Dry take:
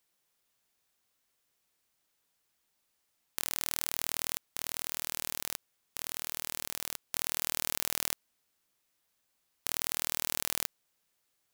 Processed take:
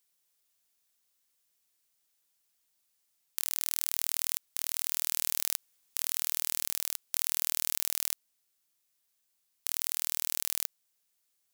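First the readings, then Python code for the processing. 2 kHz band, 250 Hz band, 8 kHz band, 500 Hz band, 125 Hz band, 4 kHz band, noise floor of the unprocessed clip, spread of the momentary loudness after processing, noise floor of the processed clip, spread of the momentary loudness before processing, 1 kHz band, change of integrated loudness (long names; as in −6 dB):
−3.0 dB, −6.5 dB, +3.0 dB, −6.5 dB, can't be measured, +0.5 dB, −78 dBFS, 6 LU, −77 dBFS, 8 LU, −5.5 dB, +3.0 dB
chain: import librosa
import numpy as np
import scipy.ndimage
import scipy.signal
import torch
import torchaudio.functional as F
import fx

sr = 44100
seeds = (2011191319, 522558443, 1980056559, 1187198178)

y = fx.high_shelf(x, sr, hz=3100.0, db=11.0)
y = fx.rider(y, sr, range_db=10, speed_s=2.0)
y = y * librosa.db_to_amplitude(-6.5)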